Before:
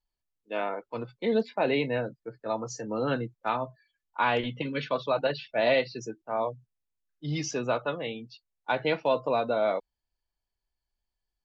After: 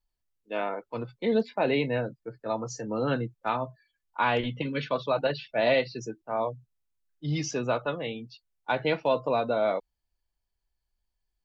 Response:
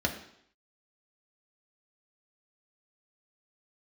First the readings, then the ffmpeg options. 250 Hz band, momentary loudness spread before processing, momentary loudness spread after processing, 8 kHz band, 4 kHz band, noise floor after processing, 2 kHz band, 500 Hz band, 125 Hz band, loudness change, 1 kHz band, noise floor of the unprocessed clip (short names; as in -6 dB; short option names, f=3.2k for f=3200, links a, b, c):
+1.5 dB, 11 LU, 12 LU, n/a, 0.0 dB, -82 dBFS, 0.0 dB, +0.5 dB, +3.0 dB, +0.5 dB, 0.0 dB, under -85 dBFS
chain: -af "lowshelf=f=140:g=5.5"